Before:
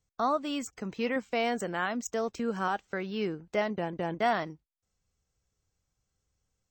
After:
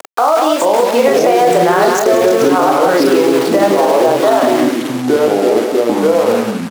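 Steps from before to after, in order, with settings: Doppler pass-by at 1.78 s, 22 m/s, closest 19 m; peaking EQ 2.4 kHz -9 dB 1.8 oct; compression 6:1, threshold -38 dBFS, peak gain reduction 10.5 dB; tilt EQ -3.5 dB/octave; early reflections 26 ms -6 dB, 45 ms -6.5 dB; upward compressor, threshold -39 dBFS; small samples zeroed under -48 dBFS; high-pass 510 Hz 24 dB/octave; ever faster or slower copies 373 ms, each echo -5 st, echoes 2; on a send: delay 181 ms -8 dB; on the sum: loudness maximiser +34.5 dB; trim -1 dB

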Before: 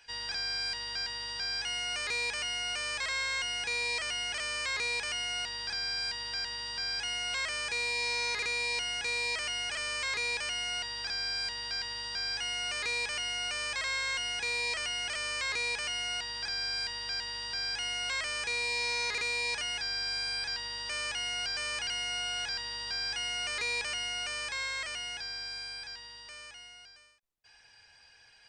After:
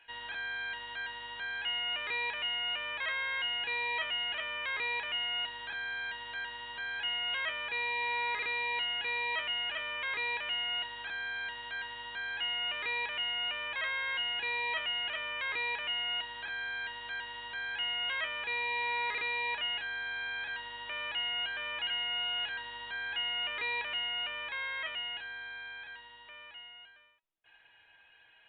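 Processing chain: bass shelf 130 Hz -10.5 dB; feedback comb 320 Hz, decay 0.19 s, harmonics all, mix 70%; resampled via 8 kHz; trim +7.5 dB

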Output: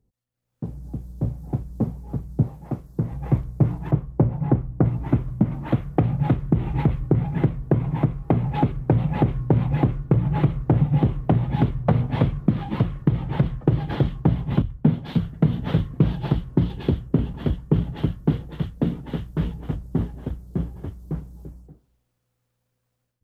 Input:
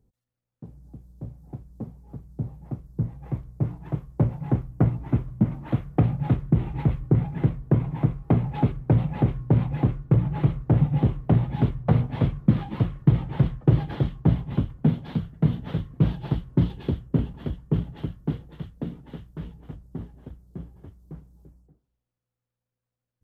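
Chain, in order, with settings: 3.91–4.85 s: treble shelf 2.2 kHz -12 dB; compression 6:1, threshold -22 dBFS, peak gain reduction 10.5 dB; 2.43–3.11 s: bass shelf 190 Hz -10.5 dB; level rider gain up to 16 dB; 14.62–15.19 s: three bands expanded up and down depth 70%; trim -4 dB

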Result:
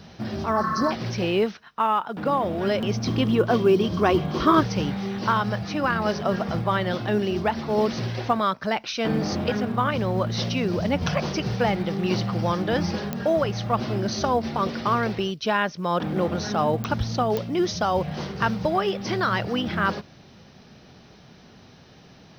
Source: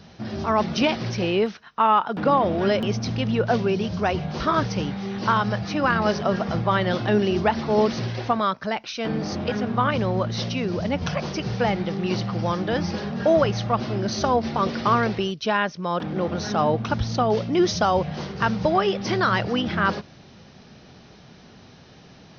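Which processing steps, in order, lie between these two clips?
0.57–0.89 s: spectral replace 1–4 kHz before; gain riding within 4 dB 0.5 s; 3.07–4.61 s: small resonant body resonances 330/1100/3200 Hz, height 11 dB, ringing for 25 ms; companded quantiser 8-bit; clicks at 13.13/16.84/17.37 s, -12 dBFS; trim -1.5 dB

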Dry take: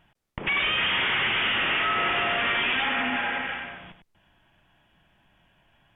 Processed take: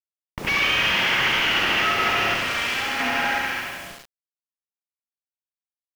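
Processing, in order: CVSD coder 32 kbps; 2.34–3.00 s: valve stage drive 25 dB, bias 0.55; flutter echo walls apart 11.9 m, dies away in 1 s; bit crusher 7-bit; trim +2 dB

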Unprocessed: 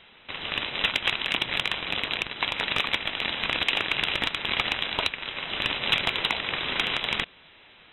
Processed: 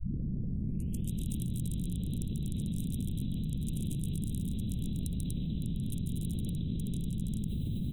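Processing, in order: tape start-up on the opening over 1.12 s; peak limiter -22 dBFS, peak gain reduction 10.5 dB; Chebyshev band-stop 190–9100 Hz, order 3; loudspeakers at several distances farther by 48 m -5 dB, 83 m -6 dB; level flattener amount 100%

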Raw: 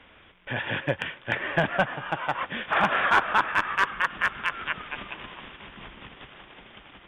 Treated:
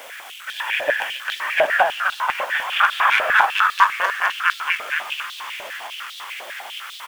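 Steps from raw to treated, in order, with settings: jump at every zero crossing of -39 dBFS; treble shelf 6.3 kHz +8 dB; in parallel at -3.5 dB: bit crusher 7-bit; on the sum: delay 262 ms -5.5 dB; step-sequenced high-pass 10 Hz 590–3800 Hz; trim -4 dB

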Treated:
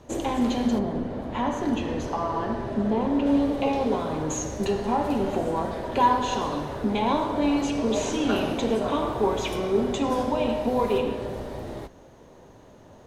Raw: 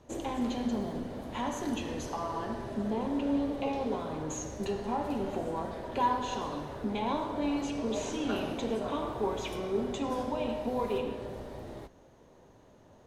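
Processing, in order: 0.78–3.25 s: low-pass 1.7 kHz -> 3.4 kHz 6 dB/octave; trim +8 dB

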